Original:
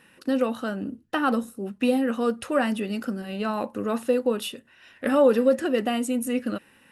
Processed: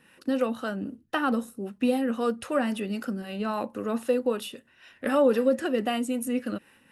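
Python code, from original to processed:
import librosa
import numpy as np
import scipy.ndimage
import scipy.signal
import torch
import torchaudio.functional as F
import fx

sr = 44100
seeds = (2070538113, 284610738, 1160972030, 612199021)

y = fx.harmonic_tremolo(x, sr, hz=3.8, depth_pct=50, crossover_hz=410.0)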